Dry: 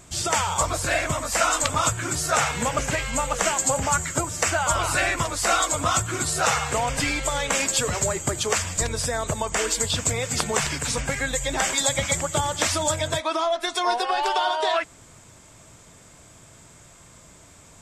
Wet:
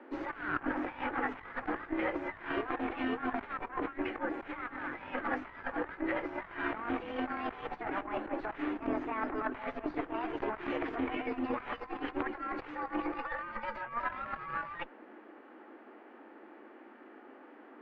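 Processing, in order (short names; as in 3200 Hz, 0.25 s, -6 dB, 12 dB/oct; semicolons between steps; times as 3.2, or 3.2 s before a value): formant shift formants +4 st; frequency shift +210 Hz; added harmonics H 4 -6 dB, 5 -34 dB, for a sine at -3.5 dBFS; negative-ratio compressor -27 dBFS, ratio -0.5; LPF 2000 Hz 24 dB/oct; gain -7 dB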